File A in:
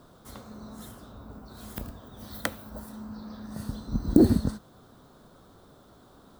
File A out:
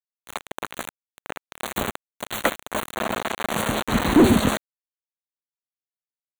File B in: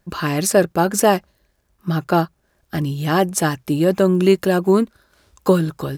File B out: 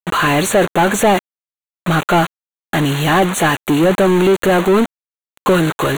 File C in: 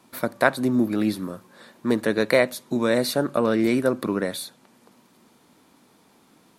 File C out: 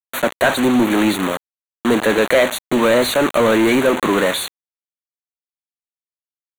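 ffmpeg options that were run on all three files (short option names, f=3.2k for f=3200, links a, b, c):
-filter_complex "[0:a]agate=range=-33dB:threshold=-47dB:ratio=3:detection=peak,asoftclip=type=hard:threshold=-11dB,acrusher=bits=5:mix=0:aa=0.000001,asplit=2[a][b];[b]highpass=f=720:p=1,volume=24dB,asoftclip=type=tanh:threshold=-10.5dB[c];[a][c]amix=inputs=2:normalize=0,lowpass=f=3.5k:p=1,volume=-6dB,asuperstop=centerf=5100:order=4:qfactor=2.4,volume=3.5dB"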